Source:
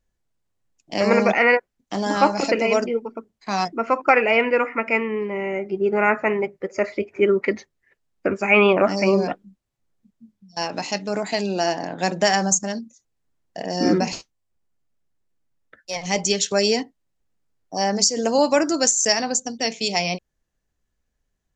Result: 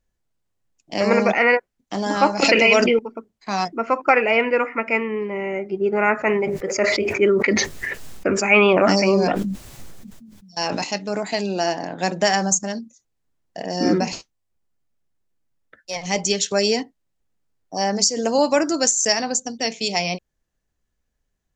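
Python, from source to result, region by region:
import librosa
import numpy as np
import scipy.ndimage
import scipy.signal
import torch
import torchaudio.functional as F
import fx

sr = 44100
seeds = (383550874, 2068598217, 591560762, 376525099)

y = fx.chain(x, sr, fx.peak_eq(hz=2800.0, db=11.0, octaves=1.4),
    fx.env_flatten(amount_pct=70), at=(2.42, 2.99))
y = fx.chain(y, sr, fx.high_shelf(hz=3900.0, db=4.5),
    fx.sustainer(db_per_s=25.0), at=(6.15, 10.84))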